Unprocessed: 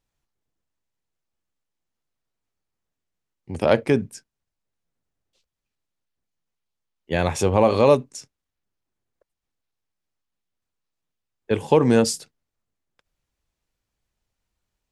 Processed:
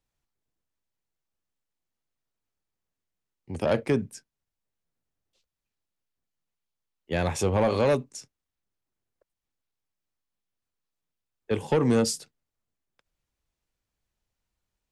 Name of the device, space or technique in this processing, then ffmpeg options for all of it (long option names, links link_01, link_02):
one-band saturation: -filter_complex "[0:a]acrossover=split=230|3800[link_01][link_02][link_03];[link_02]asoftclip=type=tanh:threshold=-14.5dB[link_04];[link_01][link_04][link_03]amix=inputs=3:normalize=0,volume=-3.5dB"